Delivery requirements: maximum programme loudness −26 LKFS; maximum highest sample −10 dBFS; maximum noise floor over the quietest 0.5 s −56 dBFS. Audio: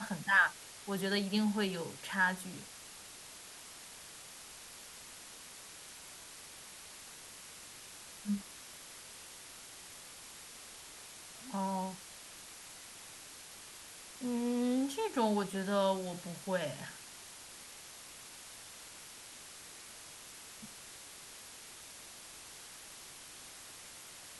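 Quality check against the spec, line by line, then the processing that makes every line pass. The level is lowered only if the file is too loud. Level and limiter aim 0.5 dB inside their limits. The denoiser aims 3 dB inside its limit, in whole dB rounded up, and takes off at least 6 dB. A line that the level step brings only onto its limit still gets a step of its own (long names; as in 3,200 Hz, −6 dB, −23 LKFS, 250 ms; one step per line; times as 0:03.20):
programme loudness −39.5 LKFS: in spec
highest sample −15.5 dBFS: in spec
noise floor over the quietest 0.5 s −52 dBFS: out of spec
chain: broadband denoise 7 dB, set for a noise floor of −52 dBFS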